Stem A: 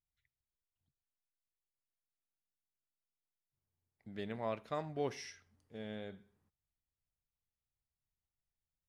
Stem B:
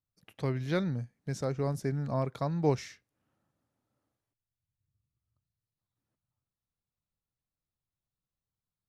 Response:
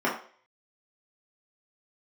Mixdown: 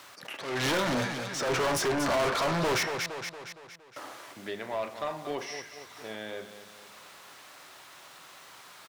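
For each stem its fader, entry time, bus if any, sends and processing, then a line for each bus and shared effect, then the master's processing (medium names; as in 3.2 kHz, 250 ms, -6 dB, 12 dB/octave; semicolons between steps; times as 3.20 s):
-9.5 dB, 0.30 s, send -18.5 dB, echo send -11 dB, none
-2.0 dB, 0.00 s, muted 2.83–3.96 s, send -20.5 dB, echo send -13.5 dB, overdrive pedal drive 33 dB, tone 5 kHz, clips at -14 dBFS; hard clipper -26.5 dBFS, distortion -10 dB; attacks held to a fixed rise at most 120 dB/s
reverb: on, RT60 0.45 s, pre-delay 3 ms
echo: feedback delay 232 ms, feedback 38%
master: overdrive pedal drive 21 dB, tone 6.9 kHz, clips at -20 dBFS; three bands compressed up and down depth 40%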